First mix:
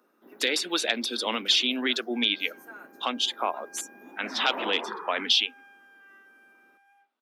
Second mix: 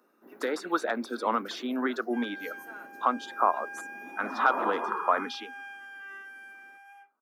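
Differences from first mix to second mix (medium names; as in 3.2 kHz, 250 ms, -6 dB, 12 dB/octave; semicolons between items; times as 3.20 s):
speech: add resonant high shelf 1.9 kHz -13.5 dB, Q 3; second sound +10.5 dB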